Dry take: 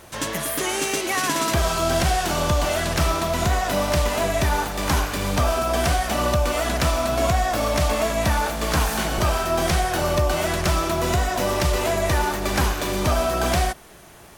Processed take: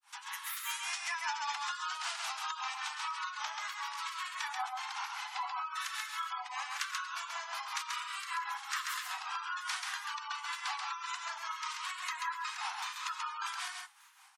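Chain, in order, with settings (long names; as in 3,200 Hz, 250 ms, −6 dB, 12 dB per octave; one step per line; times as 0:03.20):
Chebyshev high-pass filter 890 Hz, order 6
granular cloud 257 ms, grains 5.1 per second, spray 12 ms, pitch spread up and down by 3 semitones
gate on every frequency bin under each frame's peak −20 dB strong
on a send: single-tap delay 135 ms −3.5 dB
on the sum: level −8.5 dB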